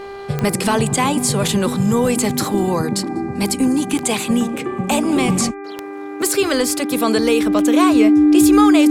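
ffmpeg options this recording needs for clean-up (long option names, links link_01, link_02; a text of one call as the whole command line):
ffmpeg -i in.wav -af "adeclick=threshold=4,bandreject=frequency=397.1:width_type=h:width=4,bandreject=frequency=794.2:width_type=h:width=4,bandreject=frequency=1191.3:width_type=h:width=4,bandreject=frequency=1588.4:width_type=h:width=4,bandreject=frequency=1985.5:width_type=h:width=4,bandreject=frequency=2382.6:width_type=h:width=4,bandreject=frequency=300:width=30" out.wav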